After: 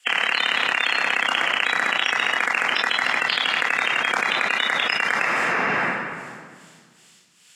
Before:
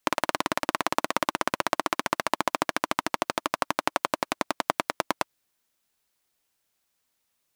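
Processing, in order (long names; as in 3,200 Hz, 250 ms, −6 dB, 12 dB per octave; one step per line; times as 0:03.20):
spectral magnitudes quantised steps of 30 dB
meter weighting curve ITU-R 468
downward expander −53 dBFS
brickwall limiter −9.5 dBFS, peak gain reduction 11.5 dB
amplitude tremolo 2.4 Hz, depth 70%
convolution reverb RT60 1.8 s, pre-delay 3 ms, DRR 2.5 dB
envelope flattener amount 100%
level −1.5 dB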